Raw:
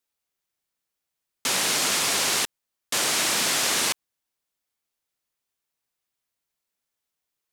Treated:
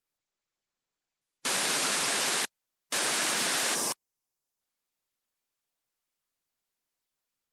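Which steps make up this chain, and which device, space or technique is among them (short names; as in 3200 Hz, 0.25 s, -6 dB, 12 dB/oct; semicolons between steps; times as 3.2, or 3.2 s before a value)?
spectral gain 3.75–4.6, 1200–4800 Hz -8 dB; dynamic EQ 1600 Hz, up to +4 dB, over -50 dBFS, Q 7.5; noise-suppressed video call (HPF 100 Hz 6 dB/oct; spectral gate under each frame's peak -15 dB strong; AGC gain up to 3 dB; gain -6 dB; Opus 24 kbps 48000 Hz)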